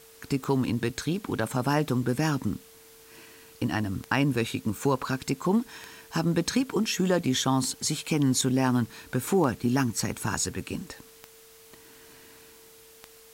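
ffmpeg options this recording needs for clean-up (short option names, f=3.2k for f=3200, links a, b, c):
-af "adeclick=t=4,bandreject=f=450:w=30,afwtdn=0.0022"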